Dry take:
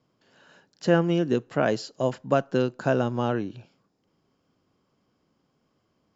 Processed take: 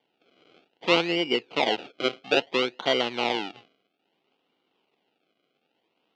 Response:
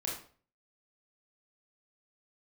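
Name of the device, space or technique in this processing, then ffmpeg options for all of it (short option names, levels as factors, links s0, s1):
circuit-bent sampling toy: -af "acrusher=samples=33:mix=1:aa=0.000001:lfo=1:lforange=33:lforate=0.6,highpass=490,equalizer=f=590:t=q:w=4:g=-6,equalizer=f=1100:t=q:w=4:g=-8,equalizer=f=1700:t=q:w=4:g=-10,equalizer=f=2900:t=q:w=4:g=7,lowpass=f=4200:w=0.5412,lowpass=f=4200:w=1.3066,volume=1.78"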